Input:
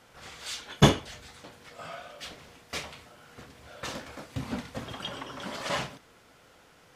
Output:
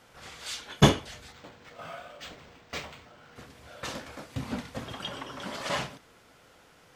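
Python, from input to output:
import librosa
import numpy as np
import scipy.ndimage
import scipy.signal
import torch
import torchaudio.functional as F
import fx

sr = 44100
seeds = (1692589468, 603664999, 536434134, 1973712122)

y = fx.resample_linear(x, sr, factor=4, at=(1.32, 3.36))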